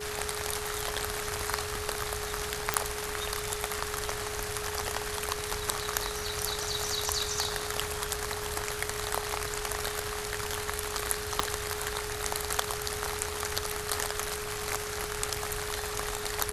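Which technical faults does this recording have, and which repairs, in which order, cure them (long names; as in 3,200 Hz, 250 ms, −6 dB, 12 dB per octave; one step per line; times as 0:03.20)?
whistle 420 Hz −38 dBFS
0:02.74: click −6 dBFS
0:11.40: click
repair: click removal
notch filter 420 Hz, Q 30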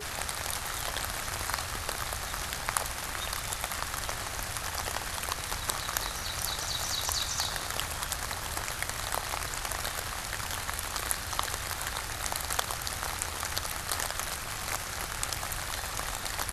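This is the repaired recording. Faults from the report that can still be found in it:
0:11.40: click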